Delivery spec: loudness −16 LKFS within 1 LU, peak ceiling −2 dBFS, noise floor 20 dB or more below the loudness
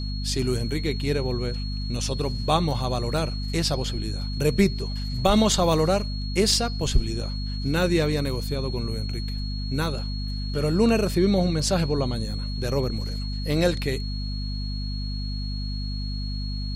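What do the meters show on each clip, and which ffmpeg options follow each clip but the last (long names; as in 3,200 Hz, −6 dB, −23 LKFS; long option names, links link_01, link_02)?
mains hum 50 Hz; hum harmonics up to 250 Hz; level of the hum −27 dBFS; interfering tone 4,300 Hz; level of the tone −37 dBFS; integrated loudness −25.5 LKFS; sample peak −6.5 dBFS; target loudness −16.0 LKFS
→ -af "bandreject=frequency=50:width_type=h:width=6,bandreject=frequency=100:width_type=h:width=6,bandreject=frequency=150:width_type=h:width=6,bandreject=frequency=200:width_type=h:width=6,bandreject=frequency=250:width_type=h:width=6"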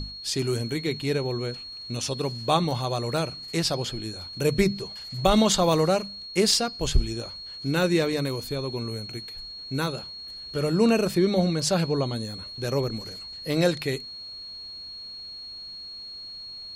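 mains hum none found; interfering tone 4,300 Hz; level of the tone −37 dBFS
→ -af "bandreject=frequency=4300:width=30"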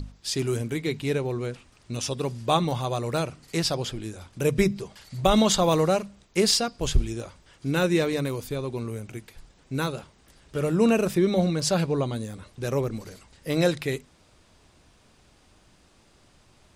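interfering tone none found; integrated loudness −26.0 LKFS; sample peak −7.0 dBFS; target loudness −16.0 LKFS
→ -af "volume=10dB,alimiter=limit=-2dB:level=0:latency=1"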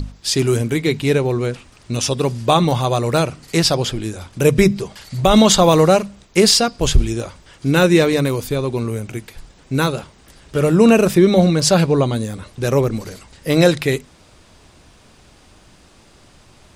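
integrated loudness −16.5 LKFS; sample peak −2.0 dBFS; background noise floor −49 dBFS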